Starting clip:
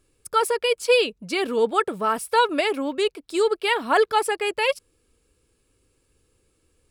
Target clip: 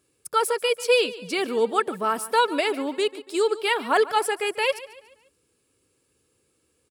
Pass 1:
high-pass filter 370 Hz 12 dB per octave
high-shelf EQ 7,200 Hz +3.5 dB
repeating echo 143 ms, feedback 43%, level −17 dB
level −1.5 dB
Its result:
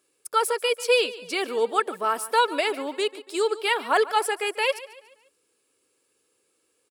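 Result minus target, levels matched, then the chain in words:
125 Hz band −10.0 dB
high-pass filter 120 Hz 12 dB per octave
high-shelf EQ 7,200 Hz +3.5 dB
repeating echo 143 ms, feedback 43%, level −17 dB
level −1.5 dB

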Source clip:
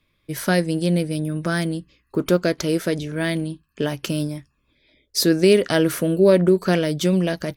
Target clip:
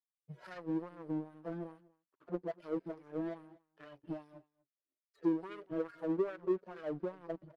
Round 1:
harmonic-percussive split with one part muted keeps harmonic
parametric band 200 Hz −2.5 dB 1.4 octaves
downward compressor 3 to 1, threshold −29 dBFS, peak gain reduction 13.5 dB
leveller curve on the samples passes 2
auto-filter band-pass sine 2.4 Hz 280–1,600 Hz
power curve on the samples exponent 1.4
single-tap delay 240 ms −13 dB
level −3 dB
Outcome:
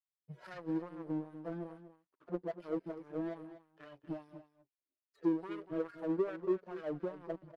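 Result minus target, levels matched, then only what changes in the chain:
echo-to-direct +10.5 dB
change: single-tap delay 240 ms −23.5 dB

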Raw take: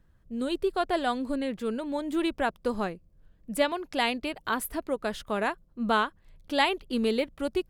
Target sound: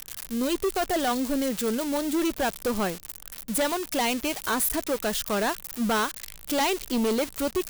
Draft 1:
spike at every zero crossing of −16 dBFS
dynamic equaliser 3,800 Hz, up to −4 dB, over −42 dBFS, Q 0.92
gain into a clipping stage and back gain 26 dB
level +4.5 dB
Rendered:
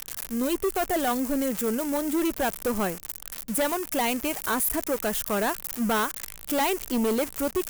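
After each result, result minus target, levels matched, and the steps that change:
spike at every zero crossing: distortion +8 dB; 4,000 Hz band −3.5 dB
change: spike at every zero crossing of −24 dBFS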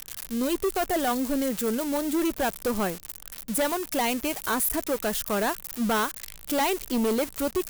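4,000 Hz band −2.5 dB
change: dynamic equaliser 14,000 Hz, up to −4 dB, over −42 dBFS, Q 0.92

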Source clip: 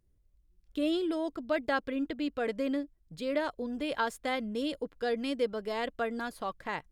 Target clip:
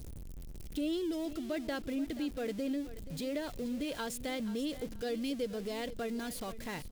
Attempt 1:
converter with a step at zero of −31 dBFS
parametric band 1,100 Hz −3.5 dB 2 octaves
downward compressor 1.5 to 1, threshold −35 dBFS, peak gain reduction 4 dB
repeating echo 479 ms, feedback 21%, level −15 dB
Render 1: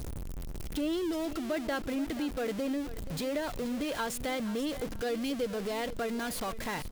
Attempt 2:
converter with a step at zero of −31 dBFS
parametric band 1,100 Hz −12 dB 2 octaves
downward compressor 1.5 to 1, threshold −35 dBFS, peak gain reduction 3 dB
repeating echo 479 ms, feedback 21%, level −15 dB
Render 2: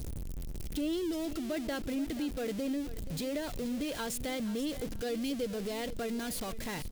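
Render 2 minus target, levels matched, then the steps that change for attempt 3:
converter with a step at zero: distortion +5 dB
change: converter with a step at zero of −38 dBFS

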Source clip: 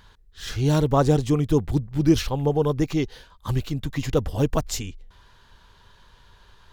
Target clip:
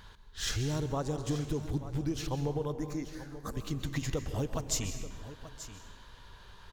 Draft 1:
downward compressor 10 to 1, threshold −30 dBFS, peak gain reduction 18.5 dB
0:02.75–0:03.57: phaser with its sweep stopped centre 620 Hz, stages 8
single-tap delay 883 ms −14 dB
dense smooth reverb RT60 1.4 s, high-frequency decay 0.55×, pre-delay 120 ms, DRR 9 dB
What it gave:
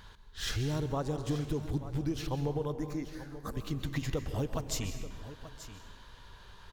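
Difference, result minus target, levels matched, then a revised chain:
8,000 Hz band −5.0 dB
downward compressor 10 to 1, threshold −30 dBFS, peak gain reduction 18.5 dB
dynamic equaliser 6,800 Hz, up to +6 dB, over −60 dBFS, Q 1.7
0:02.75–0:03.57: phaser with its sweep stopped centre 620 Hz, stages 8
single-tap delay 883 ms −14 dB
dense smooth reverb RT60 1.4 s, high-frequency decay 0.55×, pre-delay 120 ms, DRR 9 dB

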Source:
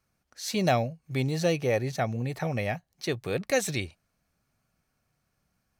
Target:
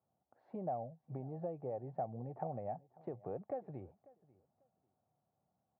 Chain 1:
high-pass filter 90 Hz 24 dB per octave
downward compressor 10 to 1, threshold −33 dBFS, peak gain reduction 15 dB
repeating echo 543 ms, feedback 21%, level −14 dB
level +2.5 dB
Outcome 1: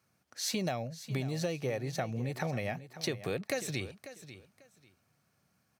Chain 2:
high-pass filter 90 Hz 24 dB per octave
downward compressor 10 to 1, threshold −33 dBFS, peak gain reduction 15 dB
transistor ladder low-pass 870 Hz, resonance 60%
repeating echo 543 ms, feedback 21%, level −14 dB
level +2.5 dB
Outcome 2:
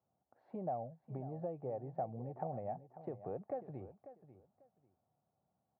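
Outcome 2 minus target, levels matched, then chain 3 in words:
echo-to-direct +8.5 dB
high-pass filter 90 Hz 24 dB per octave
downward compressor 10 to 1, threshold −33 dBFS, peak gain reduction 15 dB
transistor ladder low-pass 870 Hz, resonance 60%
repeating echo 543 ms, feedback 21%, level −22.5 dB
level +2.5 dB

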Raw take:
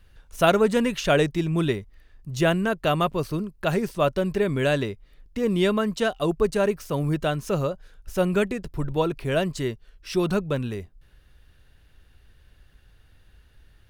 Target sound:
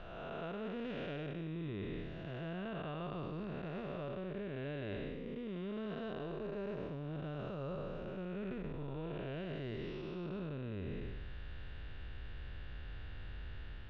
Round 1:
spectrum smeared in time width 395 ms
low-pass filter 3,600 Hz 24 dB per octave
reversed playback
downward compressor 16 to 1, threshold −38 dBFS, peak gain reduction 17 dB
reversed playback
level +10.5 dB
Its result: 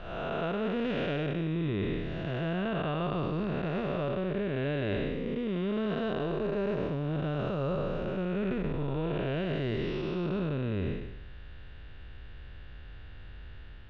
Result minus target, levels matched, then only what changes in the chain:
downward compressor: peak gain reduction −11 dB
change: downward compressor 16 to 1, threshold −49.5 dBFS, peak gain reduction 28 dB

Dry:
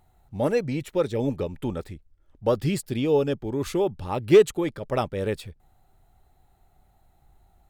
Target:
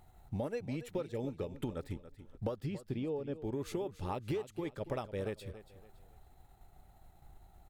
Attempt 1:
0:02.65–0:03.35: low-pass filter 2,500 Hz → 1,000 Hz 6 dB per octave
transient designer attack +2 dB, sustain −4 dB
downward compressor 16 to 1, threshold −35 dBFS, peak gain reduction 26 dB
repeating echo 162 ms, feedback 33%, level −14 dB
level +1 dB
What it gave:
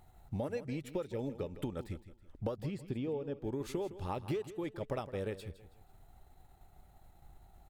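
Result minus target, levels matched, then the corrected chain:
echo 120 ms early
0:02.65–0:03.35: low-pass filter 2,500 Hz → 1,000 Hz 6 dB per octave
transient designer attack +2 dB, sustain −4 dB
downward compressor 16 to 1, threshold −35 dBFS, peak gain reduction 26 dB
repeating echo 282 ms, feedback 33%, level −14 dB
level +1 dB

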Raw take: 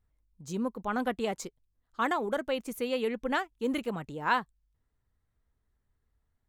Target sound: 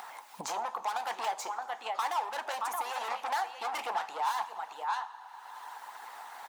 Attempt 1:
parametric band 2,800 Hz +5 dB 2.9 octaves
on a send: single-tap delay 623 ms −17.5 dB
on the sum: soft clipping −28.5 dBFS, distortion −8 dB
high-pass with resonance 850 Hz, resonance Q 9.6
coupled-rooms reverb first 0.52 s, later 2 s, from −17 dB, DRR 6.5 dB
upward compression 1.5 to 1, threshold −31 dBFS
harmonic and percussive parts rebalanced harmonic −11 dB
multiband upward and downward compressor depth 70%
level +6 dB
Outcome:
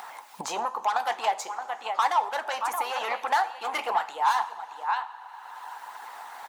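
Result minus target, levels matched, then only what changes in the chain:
soft clipping: distortion −5 dB
change: soft clipping −39 dBFS, distortion −2 dB

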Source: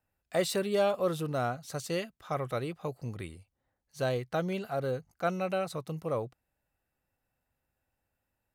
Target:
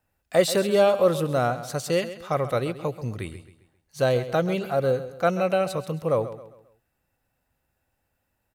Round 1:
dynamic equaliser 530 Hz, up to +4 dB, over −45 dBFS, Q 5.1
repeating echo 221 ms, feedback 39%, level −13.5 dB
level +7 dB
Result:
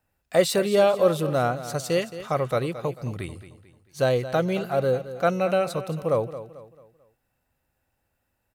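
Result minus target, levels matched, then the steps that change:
echo 88 ms late
change: repeating echo 133 ms, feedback 39%, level −13.5 dB

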